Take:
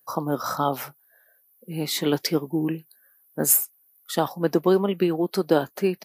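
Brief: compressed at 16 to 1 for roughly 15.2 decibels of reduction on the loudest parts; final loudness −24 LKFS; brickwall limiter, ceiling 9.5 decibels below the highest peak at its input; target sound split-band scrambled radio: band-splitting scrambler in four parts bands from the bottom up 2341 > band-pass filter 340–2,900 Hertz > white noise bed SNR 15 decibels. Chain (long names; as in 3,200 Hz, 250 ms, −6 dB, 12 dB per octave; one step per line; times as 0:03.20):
downward compressor 16 to 1, threshold −29 dBFS
brickwall limiter −25.5 dBFS
band-splitting scrambler in four parts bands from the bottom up 2341
band-pass filter 340–2,900 Hz
white noise bed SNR 15 dB
level +19 dB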